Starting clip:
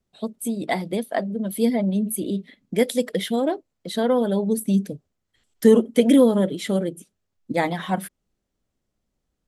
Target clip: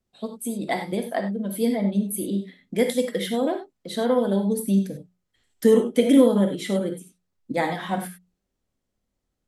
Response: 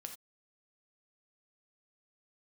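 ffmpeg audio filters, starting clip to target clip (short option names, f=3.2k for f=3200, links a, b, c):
-filter_complex "[0:a]bandreject=f=60:t=h:w=6,bandreject=f=120:t=h:w=6,bandreject=f=180:t=h:w=6[a];[1:a]atrim=start_sample=2205,atrim=end_sample=3528,asetrate=33957,aresample=44100[b];[a][b]afir=irnorm=-1:irlink=0,volume=1.5dB"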